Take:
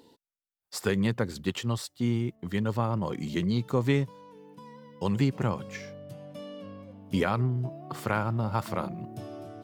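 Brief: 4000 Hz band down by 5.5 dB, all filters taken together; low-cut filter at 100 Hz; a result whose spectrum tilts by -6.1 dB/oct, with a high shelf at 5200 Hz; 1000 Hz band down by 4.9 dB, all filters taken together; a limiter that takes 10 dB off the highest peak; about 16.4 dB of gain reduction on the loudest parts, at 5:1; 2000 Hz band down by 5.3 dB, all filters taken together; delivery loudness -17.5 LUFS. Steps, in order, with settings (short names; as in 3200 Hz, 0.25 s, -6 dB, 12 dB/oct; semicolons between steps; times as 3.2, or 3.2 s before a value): HPF 100 Hz; bell 1000 Hz -5 dB; bell 2000 Hz -4 dB; bell 4000 Hz -7.5 dB; high shelf 5200 Hz +4.5 dB; compressor 5:1, threshold -40 dBFS; gain +29 dB; limiter -7.5 dBFS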